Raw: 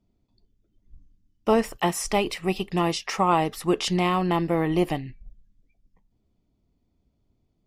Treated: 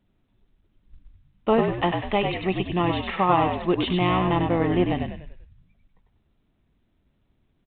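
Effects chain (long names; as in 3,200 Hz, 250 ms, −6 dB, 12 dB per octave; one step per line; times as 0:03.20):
echo with shifted repeats 97 ms, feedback 41%, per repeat −52 Hz, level −4.5 dB
mu-law 64 kbit/s 8,000 Hz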